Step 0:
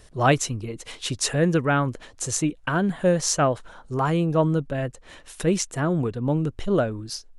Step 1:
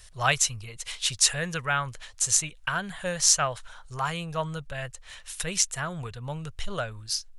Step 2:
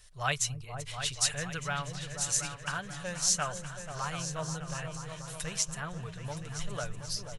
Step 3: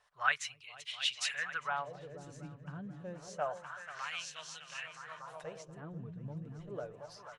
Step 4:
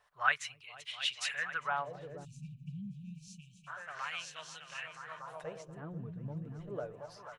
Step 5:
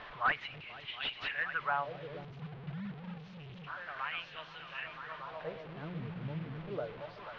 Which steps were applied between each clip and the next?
amplifier tone stack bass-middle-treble 10-0-10; trim +5.5 dB
comb 6.8 ms, depth 34%; delay with an opening low-pass 242 ms, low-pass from 200 Hz, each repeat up 2 oct, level -3 dB; trim -7.5 dB
wah-wah 0.28 Hz 220–3100 Hz, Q 2.4; trim +4.5 dB
spectral selection erased 2.25–3.68 s, 240–2300 Hz; peaking EQ 5.7 kHz -5 dB 1.8 oct; trim +2 dB
one-bit delta coder 64 kbps, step -43 dBFS; inverse Chebyshev low-pass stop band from 8 kHz, stop band 50 dB; trim +1.5 dB

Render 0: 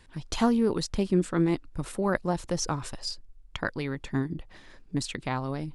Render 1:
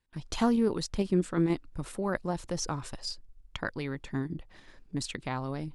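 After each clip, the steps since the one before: gate with hold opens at -44 dBFS; in parallel at -1 dB: level held to a coarse grid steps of 12 dB; on the sum: trim -6.5 dB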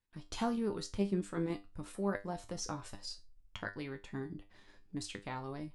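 feedback comb 100 Hz, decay 0.24 s, harmonics all, mix 80%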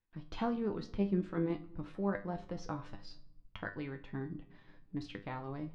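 distance through air 270 m; simulated room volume 3900 m³, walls furnished, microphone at 0.64 m; trim +1 dB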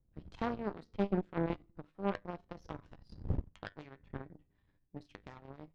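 wind noise 96 Hz -44 dBFS; Chebyshev shaper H 4 -17 dB, 6 -42 dB, 7 -18 dB, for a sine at -19 dBFS; trim -1 dB

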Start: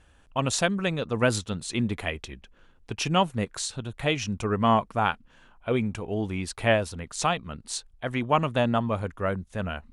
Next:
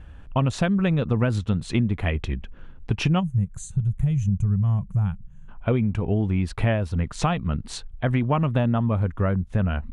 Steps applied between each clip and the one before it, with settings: time-frequency box 3.20–5.49 s, 210–6000 Hz -21 dB; tone controls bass +11 dB, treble -13 dB; compression 6:1, threshold -25 dBFS, peak gain reduction 12 dB; trim +6.5 dB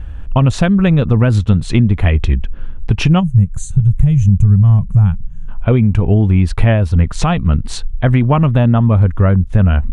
bass shelf 86 Hz +12 dB; loudness maximiser +9 dB; trim -1 dB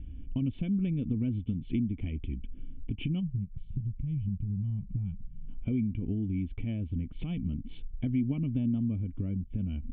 compression 10:1, threshold -16 dBFS, peak gain reduction 11.5 dB; cascade formant filter i; trim -2 dB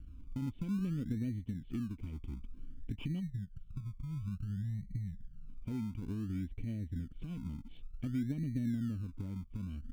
rotary cabinet horn 0.6 Hz; in parallel at -11 dB: decimation with a swept rate 30×, swing 60% 0.56 Hz; on the sum: trim -7.5 dB

